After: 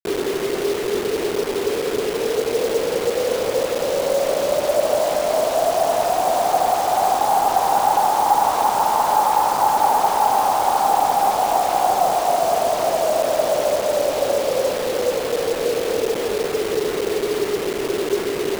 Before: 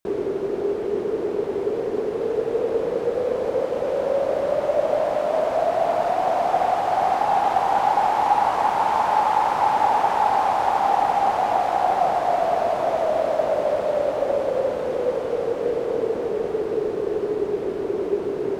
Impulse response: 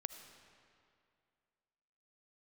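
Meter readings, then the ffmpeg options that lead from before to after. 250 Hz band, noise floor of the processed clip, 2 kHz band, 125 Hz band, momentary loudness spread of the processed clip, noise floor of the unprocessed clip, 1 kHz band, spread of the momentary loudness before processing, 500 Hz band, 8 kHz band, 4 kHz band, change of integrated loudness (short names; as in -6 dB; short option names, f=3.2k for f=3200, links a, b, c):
+2.0 dB, -25 dBFS, +3.5 dB, +1.5 dB, 5 LU, -28 dBFS, +2.5 dB, 6 LU, +2.0 dB, n/a, +11.0 dB, +2.5 dB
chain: -af "lowpass=f=1.5k:w=0.5412,lowpass=f=1.5k:w=1.3066,lowshelf=f=81:g=-10.5,acrusher=bits=4:mix=0:aa=0.000001,volume=2.5dB"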